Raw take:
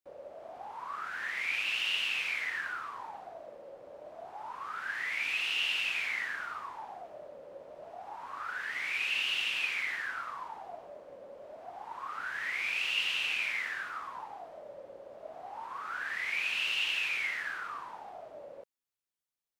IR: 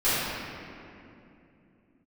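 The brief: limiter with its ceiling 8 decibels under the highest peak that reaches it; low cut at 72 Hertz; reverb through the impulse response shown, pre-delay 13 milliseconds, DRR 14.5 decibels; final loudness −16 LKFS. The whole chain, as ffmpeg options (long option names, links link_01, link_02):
-filter_complex "[0:a]highpass=72,alimiter=level_in=3.5dB:limit=-24dB:level=0:latency=1,volume=-3.5dB,asplit=2[link_01][link_02];[1:a]atrim=start_sample=2205,adelay=13[link_03];[link_02][link_03]afir=irnorm=-1:irlink=0,volume=-31dB[link_04];[link_01][link_04]amix=inputs=2:normalize=0,volume=20dB"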